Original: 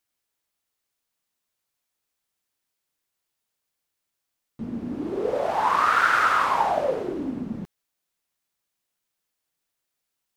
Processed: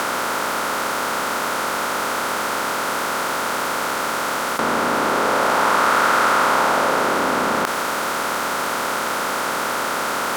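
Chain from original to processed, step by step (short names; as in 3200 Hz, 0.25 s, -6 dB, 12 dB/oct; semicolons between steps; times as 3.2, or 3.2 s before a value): per-bin compression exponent 0.2; in parallel at +0.5 dB: negative-ratio compressor -23 dBFS, ratio -1; on the sum: pre-emphasis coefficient 0.8; gain +7 dB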